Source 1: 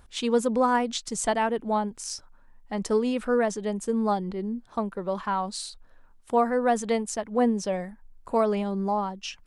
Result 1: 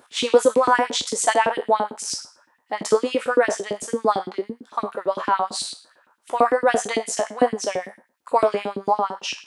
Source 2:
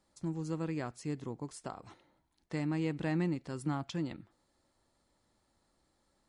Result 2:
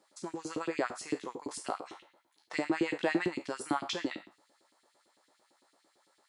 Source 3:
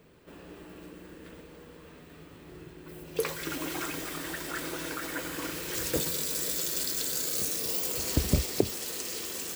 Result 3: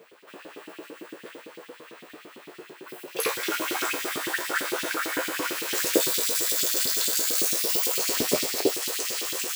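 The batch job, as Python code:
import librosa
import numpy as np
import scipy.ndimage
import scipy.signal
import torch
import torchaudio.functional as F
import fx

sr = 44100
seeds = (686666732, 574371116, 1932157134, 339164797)

y = fx.spec_trails(x, sr, decay_s=0.38)
y = fx.filter_lfo_highpass(y, sr, shape='saw_up', hz=8.9, low_hz=260.0, high_hz=3500.0, q=2.0)
y = scipy.signal.sosfilt(scipy.signal.butter(4, 54.0, 'highpass', fs=sr, output='sos'), y)
y = y * 10.0 ** (4.5 / 20.0)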